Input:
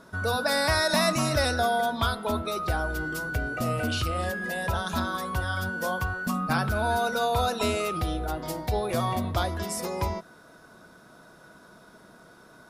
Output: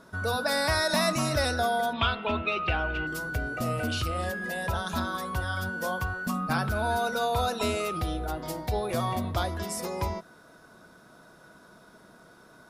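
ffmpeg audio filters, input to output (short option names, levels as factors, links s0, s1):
-filter_complex "[0:a]asettb=1/sr,asplit=3[s0][s1][s2];[s0]atrim=end=1.934[s3];[s1]atrim=start=1.93:end=3.07,asetpts=PTS-STARTPTS,afade=t=in:d=0.004:c=qsin,afade=t=out:st=1.136:d=0.004:c=qsin,lowpass=f=2700:t=q:w=10[s4];[s2]atrim=start=3.066[s5];[s3][s4]acrossfade=d=0.004:c1=hsin:c2=qsin[s6];[s6][s5]acrossfade=d=0.004:c1=qsin:c2=hsin,acontrast=33,volume=0.447"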